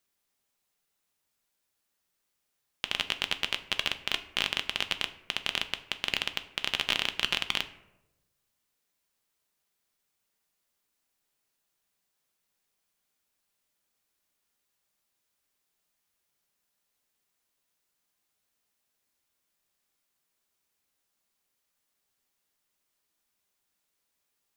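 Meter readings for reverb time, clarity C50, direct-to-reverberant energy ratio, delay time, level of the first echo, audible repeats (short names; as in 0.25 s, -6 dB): 0.95 s, 14.5 dB, 9.0 dB, none, none, none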